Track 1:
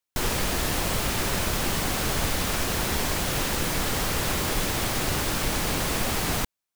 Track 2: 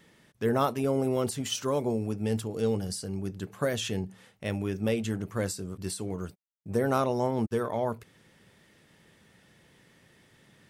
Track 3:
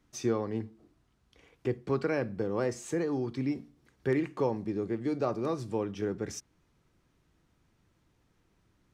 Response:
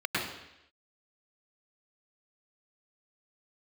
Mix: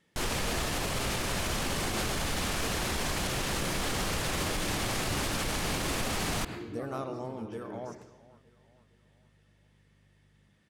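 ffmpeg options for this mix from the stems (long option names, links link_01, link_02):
-filter_complex "[0:a]volume=1dB,asplit=2[link_01][link_02];[link_02]volume=-23dB[link_03];[1:a]volume=-11.5dB,asplit=3[link_04][link_05][link_06];[link_05]volume=-21.5dB[link_07];[link_06]volume=-19dB[link_08];[2:a]aeval=exprs='val(0)+0.00282*(sin(2*PI*50*n/s)+sin(2*PI*2*50*n/s)/2+sin(2*PI*3*50*n/s)/3+sin(2*PI*4*50*n/s)/4+sin(2*PI*5*50*n/s)/5)':channel_layout=same,adelay=1550,volume=-18dB,asplit=2[link_09][link_10];[link_10]volume=-5dB[link_11];[3:a]atrim=start_sample=2205[link_12];[link_03][link_07][link_11]amix=inputs=3:normalize=0[link_13];[link_13][link_12]afir=irnorm=-1:irlink=0[link_14];[link_08]aecho=0:1:459|918|1377|1836|2295|2754:1|0.46|0.212|0.0973|0.0448|0.0206[link_15];[link_01][link_04][link_09][link_14][link_15]amix=inputs=5:normalize=0,lowpass=11000,alimiter=limit=-22dB:level=0:latency=1:release=69"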